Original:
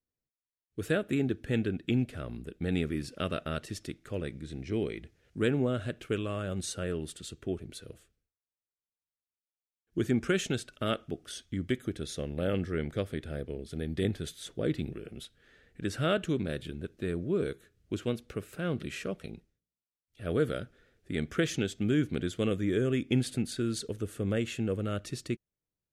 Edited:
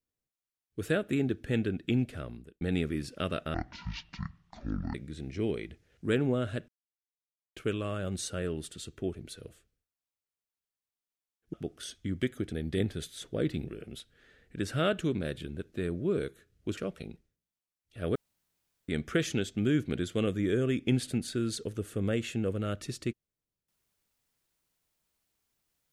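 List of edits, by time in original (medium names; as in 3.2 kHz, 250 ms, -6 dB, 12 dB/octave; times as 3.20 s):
2.19–2.61 s: fade out
3.54–4.27 s: speed 52%
6.01 s: insert silence 0.88 s
9.98–11.01 s: delete
12.00–13.77 s: delete
18.02–19.01 s: delete
20.39–21.12 s: room tone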